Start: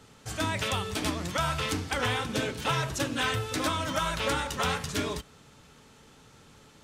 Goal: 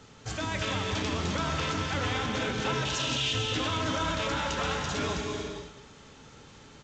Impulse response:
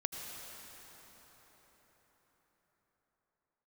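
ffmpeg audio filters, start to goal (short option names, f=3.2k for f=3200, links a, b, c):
-filter_complex "[0:a]asettb=1/sr,asplit=3[a][b][c];[a]atrim=end=2.854[d];[b]atrim=start=2.85:end=3.33,asetpts=PTS-STARTPTS,afade=t=in:d=0.004:c=qsin,afade=t=out:st=0.476:d=0.004:c=qsin,highshelf=f=2.1k:t=q:w=3:g=12[e];[c]atrim=start=3.326[f];[d][e]acrossfade=d=0.004:c1=hsin:c2=qsin[g];[g][f]acrossfade=d=0.004:c1=qsin:c2=hsin,alimiter=level_in=0.5dB:limit=-24dB:level=0:latency=1,volume=-0.5dB,aecho=1:1:207:0.2[h];[1:a]atrim=start_sample=2205,afade=t=out:st=0.33:d=0.01,atrim=end_sample=14994,asetrate=24696,aresample=44100[i];[h][i]afir=irnorm=-1:irlink=0" -ar 16000 -c:a g722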